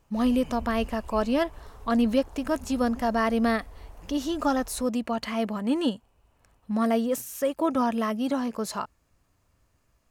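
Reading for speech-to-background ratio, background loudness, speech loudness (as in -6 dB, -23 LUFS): 20.0 dB, -47.0 LUFS, -27.0 LUFS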